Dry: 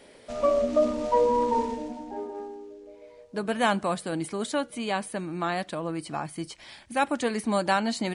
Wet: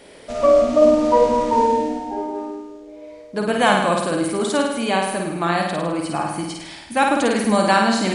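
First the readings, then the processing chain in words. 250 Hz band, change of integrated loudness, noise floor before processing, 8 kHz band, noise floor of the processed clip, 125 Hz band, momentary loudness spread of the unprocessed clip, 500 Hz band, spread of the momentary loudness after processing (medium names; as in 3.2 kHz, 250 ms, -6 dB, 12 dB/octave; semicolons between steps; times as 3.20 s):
+9.0 dB, +9.0 dB, -52 dBFS, +9.0 dB, -41 dBFS, +8.0 dB, 15 LU, +9.0 dB, 15 LU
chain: on a send: flutter echo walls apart 9 m, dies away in 0.93 s; on the sum: trim +6.5 dB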